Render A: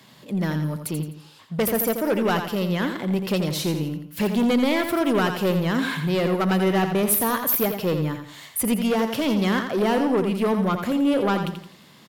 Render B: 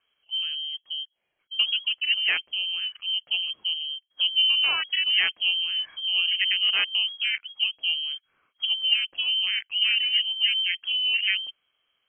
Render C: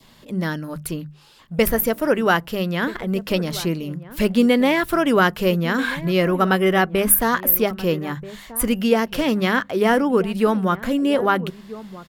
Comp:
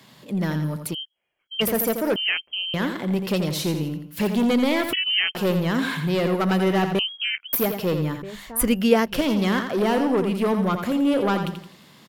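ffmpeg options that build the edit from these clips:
ffmpeg -i take0.wav -i take1.wav -i take2.wav -filter_complex "[1:a]asplit=4[link_01][link_02][link_03][link_04];[0:a]asplit=6[link_05][link_06][link_07][link_08][link_09][link_10];[link_05]atrim=end=0.95[link_11];[link_01]atrim=start=0.93:end=1.62[link_12];[link_06]atrim=start=1.6:end=2.162[link_13];[link_02]atrim=start=2.158:end=2.742[link_14];[link_07]atrim=start=2.738:end=4.932[link_15];[link_03]atrim=start=4.928:end=5.352[link_16];[link_08]atrim=start=5.348:end=6.992[link_17];[link_04]atrim=start=6.988:end=7.532[link_18];[link_09]atrim=start=7.528:end=8.222[link_19];[2:a]atrim=start=8.218:end=9.212[link_20];[link_10]atrim=start=9.208[link_21];[link_11][link_12]acrossfade=duration=0.02:curve1=tri:curve2=tri[link_22];[link_22][link_13]acrossfade=duration=0.02:curve1=tri:curve2=tri[link_23];[link_23][link_14]acrossfade=duration=0.004:curve1=hsin:curve2=hsin[link_24];[link_24][link_15]acrossfade=duration=0.004:curve1=hsin:curve2=hsin[link_25];[link_25][link_16]acrossfade=duration=0.004:curve1=hsin:curve2=hsin[link_26];[link_26][link_17]acrossfade=duration=0.004:curve1=hsin:curve2=hsin[link_27];[link_27][link_18]acrossfade=duration=0.004:curve1=hsin:curve2=hsin[link_28];[link_28][link_19]acrossfade=duration=0.004:curve1=hsin:curve2=hsin[link_29];[link_29][link_20]acrossfade=duration=0.004:curve1=hsin:curve2=hsin[link_30];[link_30][link_21]acrossfade=duration=0.004:curve1=hsin:curve2=hsin" out.wav

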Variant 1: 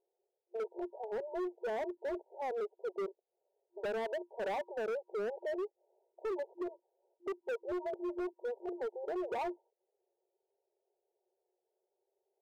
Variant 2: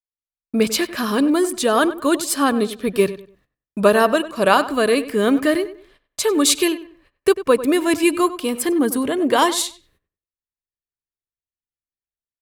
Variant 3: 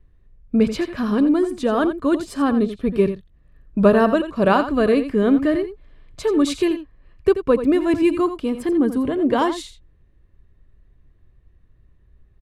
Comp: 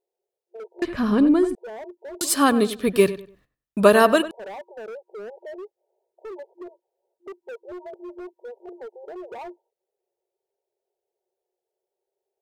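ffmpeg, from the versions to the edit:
ffmpeg -i take0.wav -i take1.wav -i take2.wav -filter_complex "[0:a]asplit=3[link_01][link_02][link_03];[link_01]atrim=end=0.822[link_04];[2:a]atrim=start=0.818:end=1.552[link_05];[link_02]atrim=start=1.548:end=2.212[link_06];[1:a]atrim=start=2.208:end=4.312[link_07];[link_03]atrim=start=4.308[link_08];[link_04][link_05]acrossfade=duration=0.004:curve1=hsin:curve2=hsin[link_09];[link_09][link_06]acrossfade=duration=0.004:curve1=hsin:curve2=hsin[link_10];[link_10][link_07]acrossfade=duration=0.004:curve1=hsin:curve2=hsin[link_11];[link_11][link_08]acrossfade=duration=0.004:curve1=hsin:curve2=hsin" out.wav

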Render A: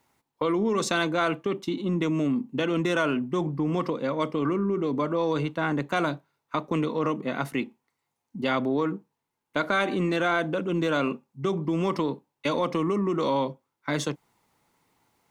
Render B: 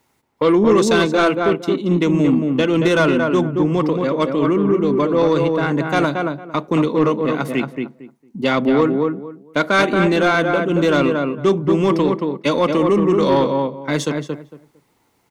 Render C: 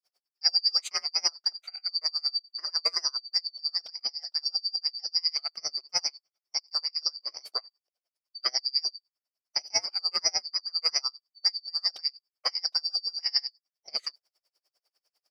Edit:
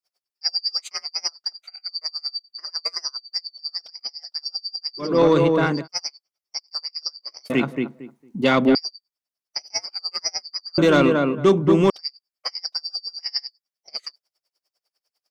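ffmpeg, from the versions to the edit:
ffmpeg -i take0.wav -i take1.wav -i take2.wav -filter_complex "[1:a]asplit=3[link_01][link_02][link_03];[2:a]asplit=4[link_04][link_05][link_06][link_07];[link_04]atrim=end=5.21[link_08];[link_01]atrim=start=4.97:end=5.88[link_09];[link_05]atrim=start=5.64:end=7.502[link_10];[link_02]atrim=start=7.498:end=8.752[link_11];[link_06]atrim=start=8.748:end=10.782[link_12];[link_03]atrim=start=10.778:end=11.902[link_13];[link_07]atrim=start=11.898[link_14];[link_08][link_09]acrossfade=duration=0.24:curve1=tri:curve2=tri[link_15];[link_15][link_10]acrossfade=duration=0.24:curve1=tri:curve2=tri[link_16];[link_16][link_11]acrossfade=duration=0.004:curve1=hsin:curve2=hsin[link_17];[link_17][link_12]acrossfade=duration=0.004:curve1=hsin:curve2=hsin[link_18];[link_18][link_13]acrossfade=duration=0.004:curve1=hsin:curve2=hsin[link_19];[link_19][link_14]acrossfade=duration=0.004:curve1=hsin:curve2=hsin" out.wav

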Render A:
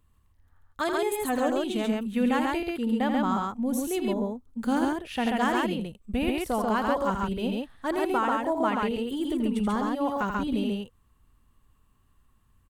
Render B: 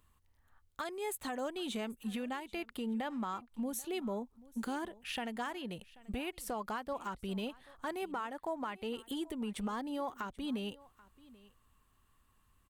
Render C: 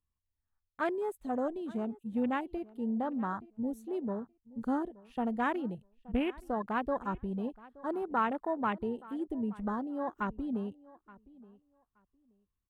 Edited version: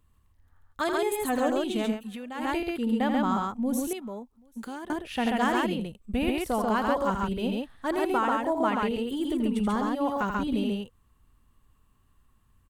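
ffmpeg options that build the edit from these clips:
ffmpeg -i take0.wav -i take1.wav -filter_complex "[1:a]asplit=2[link_01][link_02];[0:a]asplit=3[link_03][link_04][link_05];[link_03]atrim=end=2.04[link_06];[link_01]atrim=start=1.88:end=2.5[link_07];[link_04]atrim=start=2.34:end=3.932[link_08];[link_02]atrim=start=3.928:end=4.902[link_09];[link_05]atrim=start=4.898[link_10];[link_06][link_07]acrossfade=duration=0.16:curve1=tri:curve2=tri[link_11];[link_11][link_08]acrossfade=duration=0.16:curve1=tri:curve2=tri[link_12];[link_12][link_09]acrossfade=duration=0.004:curve1=hsin:curve2=hsin[link_13];[link_13][link_10]acrossfade=duration=0.004:curve1=hsin:curve2=hsin" out.wav

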